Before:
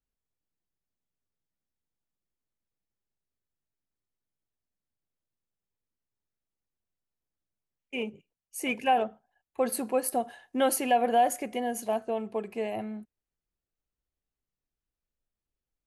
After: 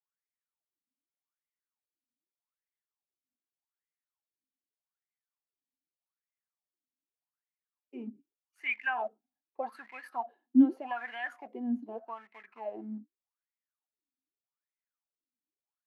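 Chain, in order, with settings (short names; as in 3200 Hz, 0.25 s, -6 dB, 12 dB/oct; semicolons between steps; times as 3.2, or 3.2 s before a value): graphic EQ 125/250/500/1000/4000/8000 Hz -10/+7/-10/+5/+5/-8 dB; in parallel at -6.5 dB: sample gate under -35 dBFS; on the sum: wah 0.83 Hz 250–2100 Hz, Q 11; gain +6 dB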